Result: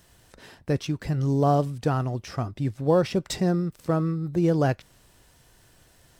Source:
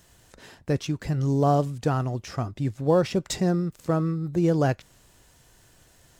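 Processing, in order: peaking EQ 6.9 kHz -6.5 dB 0.2 oct

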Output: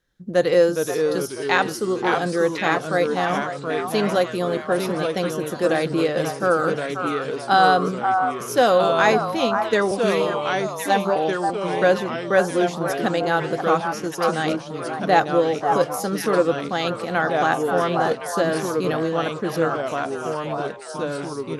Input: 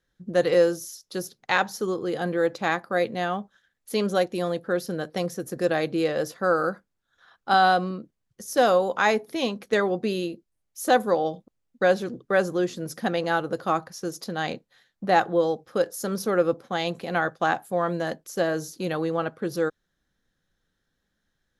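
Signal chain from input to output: 9.91–11.16 s: robot voice 197 Hz; on a send: repeats whose band climbs or falls 533 ms, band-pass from 1 kHz, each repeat 1.4 oct, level -2.5 dB; on the sum: ever faster or slower copies 369 ms, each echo -2 st, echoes 3, each echo -6 dB; trim +3 dB

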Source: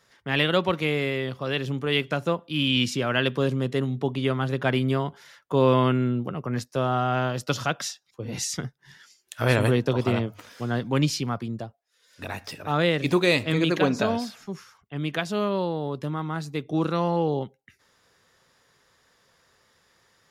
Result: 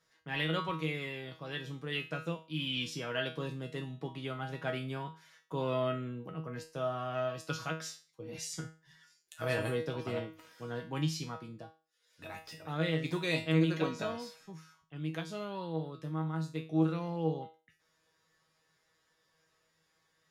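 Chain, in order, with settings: feedback comb 160 Hz, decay 0.34 s, harmonics all, mix 90%

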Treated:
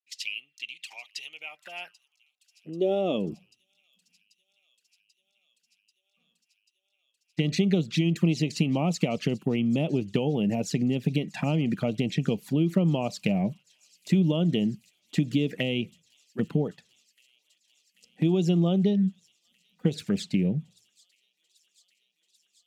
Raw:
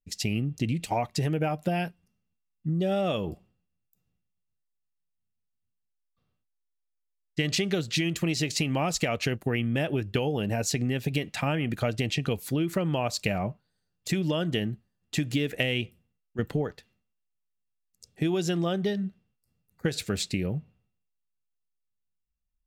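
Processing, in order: treble shelf 6.1 kHz -8.5 dB; touch-sensitive flanger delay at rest 4.2 ms, full sweep at -24 dBFS; high-pass sweep 2.7 kHz -> 180 Hz, 1.27–3.40 s; feedback echo behind a high-pass 788 ms, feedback 82%, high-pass 5.4 kHz, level -17.5 dB

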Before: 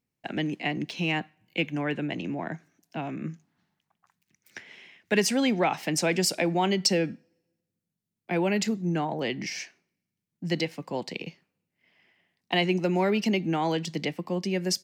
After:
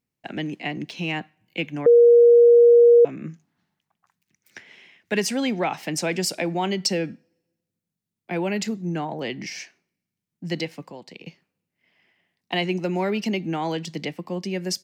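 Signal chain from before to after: 1.86–3.05 s: bleep 474 Hz -9 dBFS; 10.84–11.26 s: compression 2:1, threshold -44 dBFS, peak gain reduction 10 dB

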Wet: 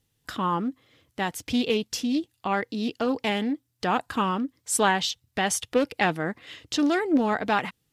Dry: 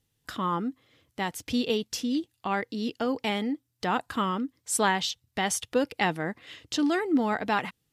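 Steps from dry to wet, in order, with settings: loudspeaker Doppler distortion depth 0.22 ms; trim +2.5 dB

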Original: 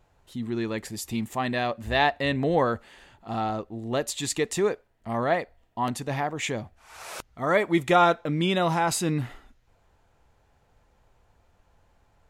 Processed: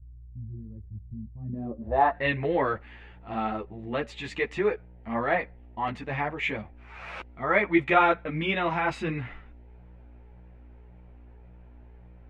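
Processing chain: mains buzz 60 Hz, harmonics 16, -46 dBFS -8 dB/octave; low-pass sweep 100 Hz -> 2.3 kHz, 1.34–2.27 s; three-phase chorus

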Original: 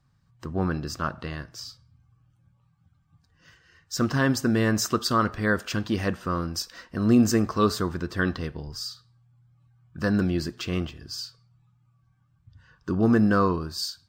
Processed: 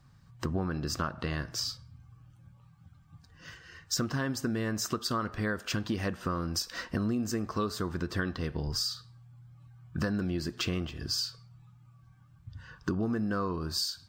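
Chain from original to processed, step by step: compression 12:1, threshold -35 dBFS, peak gain reduction 21 dB; trim +7 dB

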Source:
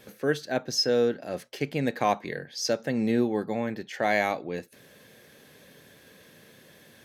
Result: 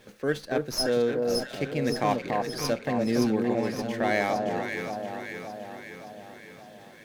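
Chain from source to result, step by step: echo whose repeats swap between lows and highs 285 ms, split 1.1 kHz, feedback 75%, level -2.5 dB; sliding maximum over 3 samples; trim -1.5 dB

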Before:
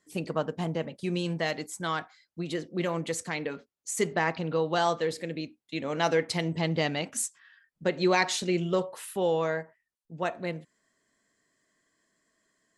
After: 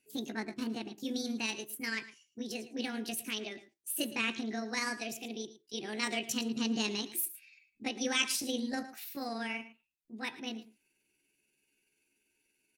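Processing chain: rotating-head pitch shifter +6 st; high-order bell 830 Hz -13 dB; delay 111 ms -15.5 dB; trim -1.5 dB

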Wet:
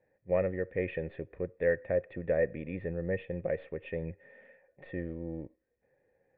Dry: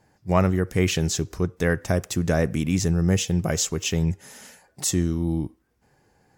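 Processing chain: partial rectifier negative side -3 dB; cascade formant filter e; trim +3.5 dB

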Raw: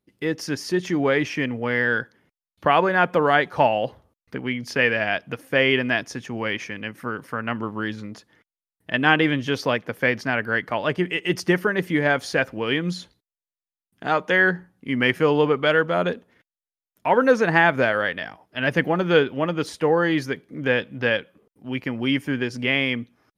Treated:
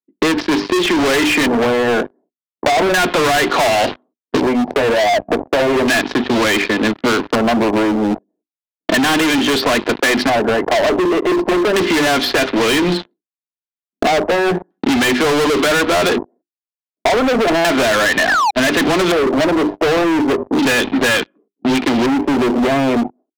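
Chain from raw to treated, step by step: steep high-pass 190 Hz 48 dB/octave; hum notches 50/100/150/200/250/300/350/400 Hz; expander -49 dBFS; level-controlled noise filter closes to 320 Hz, open at -17 dBFS; comb 2.9 ms, depth 41%; in parallel at +2 dB: compression 10:1, threshold -28 dBFS, peak gain reduction 16.5 dB; on the sum: painted sound fall, 18.28–18.51 s, 770–1900 Hz -31 dBFS; waveshaping leveller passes 5; LFO low-pass square 0.34 Hz 690–3900 Hz; overload inside the chain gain 11 dB; three bands compressed up and down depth 70%; trim -2 dB

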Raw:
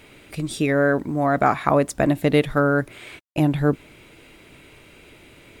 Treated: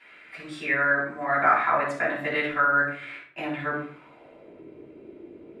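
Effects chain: band-pass sweep 1.7 kHz -> 370 Hz, 3.71–4.61 s; simulated room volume 630 m³, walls furnished, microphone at 9.4 m; trim -4.5 dB

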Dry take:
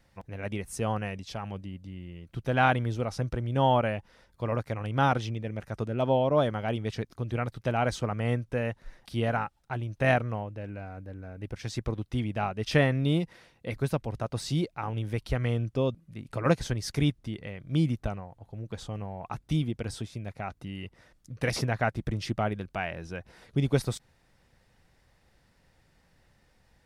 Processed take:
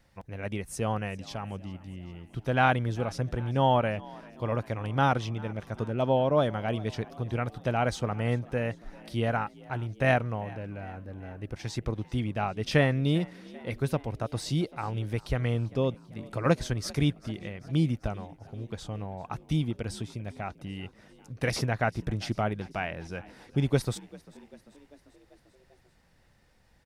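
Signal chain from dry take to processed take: frequency-shifting echo 394 ms, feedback 63%, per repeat +49 Hz, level -22 dB

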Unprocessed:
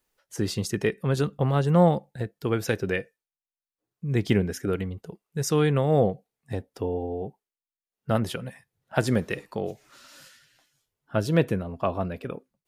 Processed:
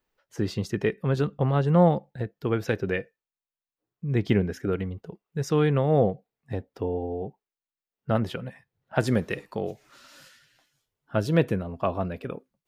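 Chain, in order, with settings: peaking EQ 10 kHz -14.5 dB 1.5 oct, from 9.00 s -4.5 dB

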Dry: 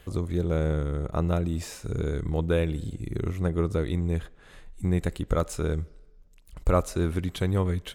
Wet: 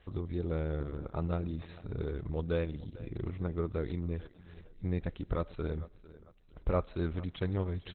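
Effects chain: feedback delay 448 ms, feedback 36%, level -18 dB; trim -7 dB; Opus 8 kbps 48 kHz

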